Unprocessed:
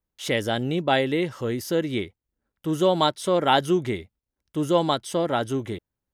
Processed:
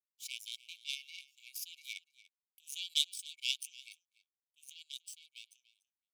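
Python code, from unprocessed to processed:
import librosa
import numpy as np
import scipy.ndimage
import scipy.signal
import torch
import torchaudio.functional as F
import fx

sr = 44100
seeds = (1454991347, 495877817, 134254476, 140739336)

p1 = fx.bin_expand(x, sr, power=1.5)
p2 = fx.doppler_pass(p1, sr, speed_mps=13, closest_m=8.9, pass_at_s=2.24)
p3 = fx.tilt_eq(p2, sr, slope=3.0)
p4 = fx.over_compress(p3, sr, threshold_db=-40.0, ratio=-1.0)
p5 = p3 + F.gain(torch.from_numpy(p4), 1.5).numpy()
p6 = fx.power_curve(p5, sr, exponent=2.0)
p7 = fx.brickwall_highpass(p6, sr, low_hz=2200.0)
p8 = p7 + 10.0 ** (-19.0 / 20.0) * np.pad(p7, (int(291 * sr / 1000.0), 0))[:len(p7)]
y = F.gain(torch.from_numpy(p8), 2.0).numpy()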